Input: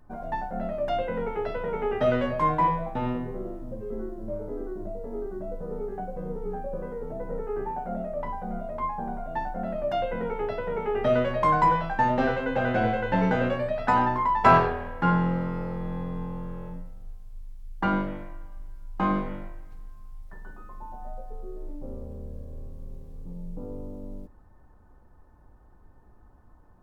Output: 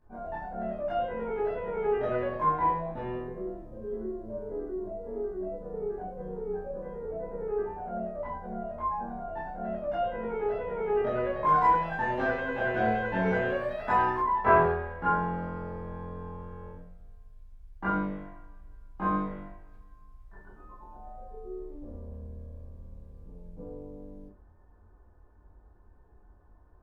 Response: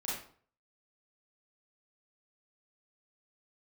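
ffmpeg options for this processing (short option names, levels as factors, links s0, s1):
-filter_complex "[0:a]acrossover=split=2800[s0][s1];[s1]acompressor=threshold=0.00224:ratio=4:attack=1:release=60[s2];[s0][s2]amix=inputs=2:normalize=0,asetnsamples=n=441:p=0,asendcmd='11.47 highshelf g 3.5;14.18 highshelf g -9.5',highshelf=f=2800:g=-8.5[s3];[1:a]atrim=start_sample=2205,asetrate=83790,aresample=44100[s4];[s3][s4]afir=irnorm=-1:irlink=0"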